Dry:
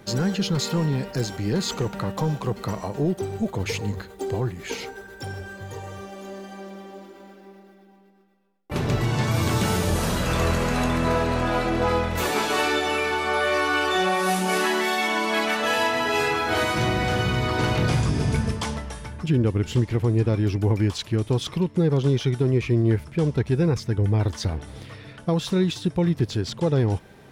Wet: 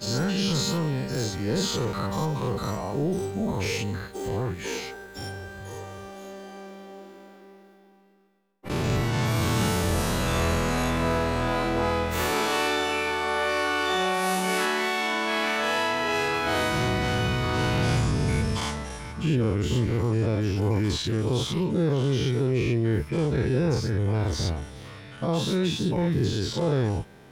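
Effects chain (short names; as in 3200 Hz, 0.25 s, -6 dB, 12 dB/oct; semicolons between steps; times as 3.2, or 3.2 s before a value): spectral dilation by 0.12 s; 14.65–16.34 high shelf 10000 Hz -7.5 dB; gain -6 dB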